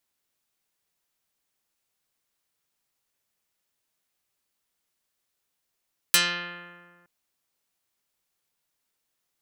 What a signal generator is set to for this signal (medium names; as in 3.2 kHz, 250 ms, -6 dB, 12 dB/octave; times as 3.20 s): plucked string F3, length 0.92 s, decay 1.83 s, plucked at 0.46, dark